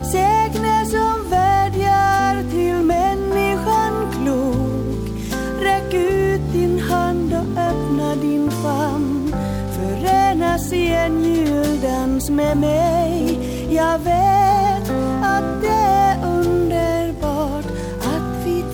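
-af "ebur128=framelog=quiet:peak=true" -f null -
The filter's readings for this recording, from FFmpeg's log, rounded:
Integrated loudness:
  I:         -18.2 LUFS
  Threshold: -28.2 LUFS
Loudness range:
  LRA:         2.6 LU
  Threshold: -38.2 LUFS
  LRA low:   -19.5 LUFS
  LRA high:  -16.9 LUFS
True peak:
  Peak:       -6.3 dBFS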